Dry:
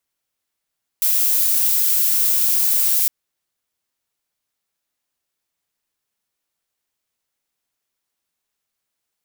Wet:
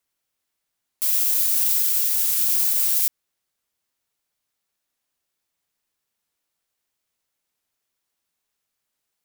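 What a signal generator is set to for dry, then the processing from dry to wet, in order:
noise violet, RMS -17 dBFS 2.06 s
limiter -10 dBFS; record warp 45 rpm, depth 100 cents

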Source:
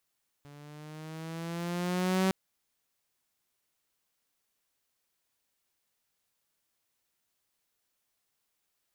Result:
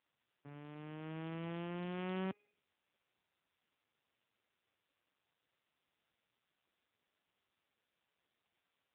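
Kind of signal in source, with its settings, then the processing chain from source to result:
gliding synth tone saw, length 1.86 s, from 143 Hz, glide +5 st, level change +25.5 dB, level -21 dB
de-hum 412.9 Hz, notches 23; compressor 5:1, threshold -37 dBFS; AMR-NB 5.9 kbps 8000 Hz

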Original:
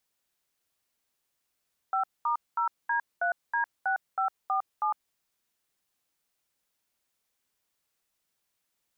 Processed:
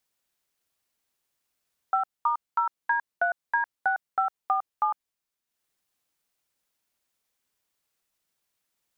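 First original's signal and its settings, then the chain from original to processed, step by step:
DTMF "5*0D3D6547", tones 0.106 s, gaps 0.215 s, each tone -27 dBFS
transient shaper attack +6 dB, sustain -7 dB

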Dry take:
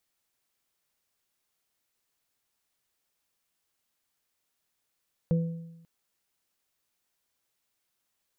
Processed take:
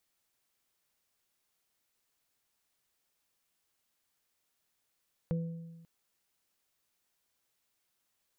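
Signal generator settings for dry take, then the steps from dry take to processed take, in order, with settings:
additive tone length 0.54 s, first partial 166 Hz, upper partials -19/-9 dB, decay 0.96 s, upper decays 0.44/0.67 s, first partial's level -20 dB
compressor 1.5:1, threshold -45 dBFS

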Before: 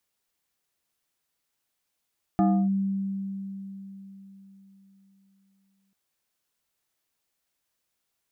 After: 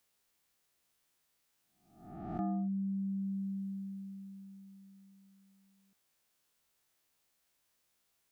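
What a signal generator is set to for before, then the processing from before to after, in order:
FM tone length 3.54 s, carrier 195 Hz, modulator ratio 2.63, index 1.1, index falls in 0.30 s linear, decay 4.03 s, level -17 dB
spectral swells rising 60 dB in 0.64 s; reverse; compressor 5:1, threshold -35 dBFS; reverse

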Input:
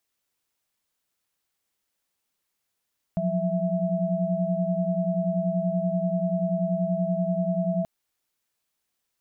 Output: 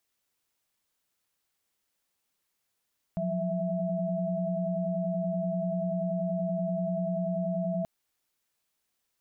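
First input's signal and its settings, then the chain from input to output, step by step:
chord F3/F#3/E5 sine, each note -27 dBFS 4.68 s
limiter -24 dBFS

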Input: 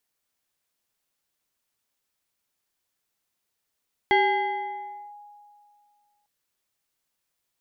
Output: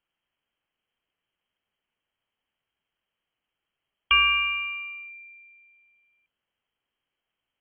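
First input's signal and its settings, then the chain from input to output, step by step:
FM tone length 2.15 s, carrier 827 Hz, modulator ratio 1.47, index 1.2, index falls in 1.02 s linear, decay 2.30 s, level -15 dB
low shelf 350 Hz +7.5 dB; inverted band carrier 3200 Hz

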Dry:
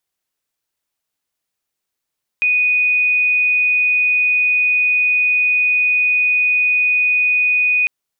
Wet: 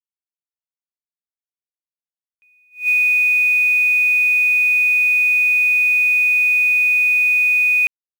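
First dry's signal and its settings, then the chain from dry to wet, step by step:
tone sine 2480 Hz -12 dBFS 5.45 s
requantised 6-bit, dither none; attack slew limiter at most 220 dB/s

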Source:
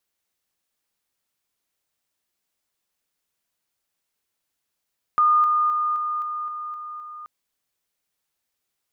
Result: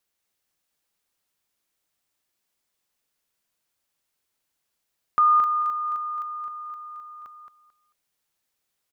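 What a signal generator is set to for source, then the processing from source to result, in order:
level ladder 1220 Hz -14 dBFS, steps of -3 dB, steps 8, 0.26 s 0.00 s
feedback echo 0.221 s, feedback 22%, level -6 dB

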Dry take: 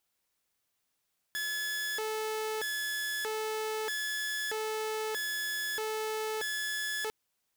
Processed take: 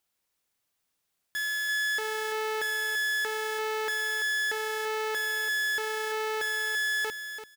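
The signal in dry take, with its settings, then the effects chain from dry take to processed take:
siren hi-lo 435–1710 Hz 0.79/s saw -29.5 dBFS 5.75 s
on a send: feedback echo 0.338 s, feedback 20%, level -9 dB; on the sum: dynamic EQ 1700 Hz, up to +5 dB, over -47 dBFS, Q 1.2

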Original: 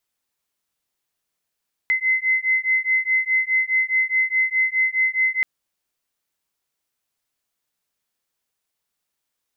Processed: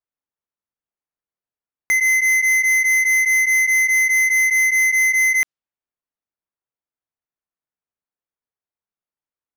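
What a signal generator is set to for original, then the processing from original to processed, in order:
beating tones 2050 Hz, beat 4.8 Hz, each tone -20.5 dBFS 3.53 s
low-pass opened by the level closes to 1600 Hz, open at -16.5 dBFS; sample leveller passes 5

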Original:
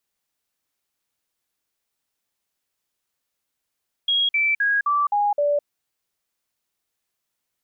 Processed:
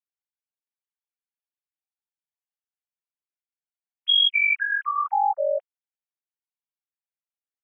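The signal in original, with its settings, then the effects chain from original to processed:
stepped sine 3290 Hz down, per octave 2, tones 6, 0.21 s, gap 0.05 s -17 dBFS
sine-wave speech; HPF 810 Hz 6 dB/oct; dynamic EQ 2300 Hz, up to +4 dB, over -33 dBFS, Q 6.7

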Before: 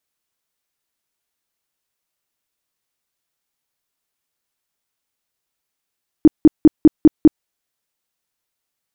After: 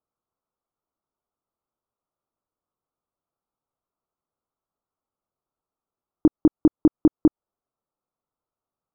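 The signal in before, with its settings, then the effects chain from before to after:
tone bursts 310 Hz, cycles 8, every 0.20 s, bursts 6, -2.5 dBFS
elliptic low-pass 1300 Hz; compressor 4:1, threshold -14 dBFS

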